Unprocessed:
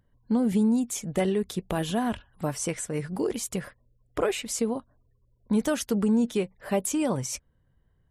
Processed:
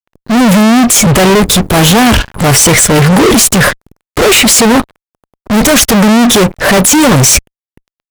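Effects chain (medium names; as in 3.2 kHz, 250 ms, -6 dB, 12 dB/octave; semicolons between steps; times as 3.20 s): fuzz box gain 49 dB, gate -57 dBFS; transient shaper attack -4 dB, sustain 0 dB; trim +8.5 dB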